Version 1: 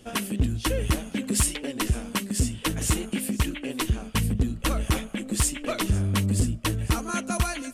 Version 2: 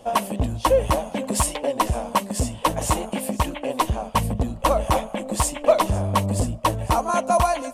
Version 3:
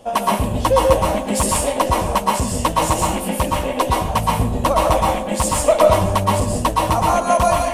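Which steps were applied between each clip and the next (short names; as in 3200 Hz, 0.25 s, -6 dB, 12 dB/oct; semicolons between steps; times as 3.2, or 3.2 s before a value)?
band shelf 750 Hz +16 dB 1.3 oct
plate-style reverb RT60 0.57 s, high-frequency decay 0.85×, pre-delay 0.105 s, DRR -2 dB; gain +1.5 dB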